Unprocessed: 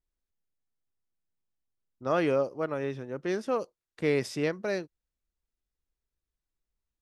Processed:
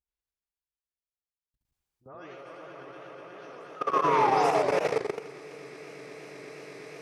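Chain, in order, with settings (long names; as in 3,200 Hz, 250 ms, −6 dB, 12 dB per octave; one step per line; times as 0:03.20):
every frequency bin delayed by itself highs late, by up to 196 ms
echo that builds up and dies away 121 ms, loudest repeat 8, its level −5 dB
sound drawn into the spectrogram fall, 0:03.76–0:05.21, 370–1,300 Hz −24 dBFS
parametric band 230 Hz −12.5 dB 0.89 octaves
feedback echo with a high-pass in the loop 142 ms, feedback 78%, high-pass 390 Hz, level −7 dB
output level in coarse steps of 22 dB
high-pass filter 51 Hz
parametric band 520 Hz −4.5 dB 0.21 octaves
feedback echo with a swinging delay time 83 ms, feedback 33%, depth 170 cents, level −5 dB
level −1 dB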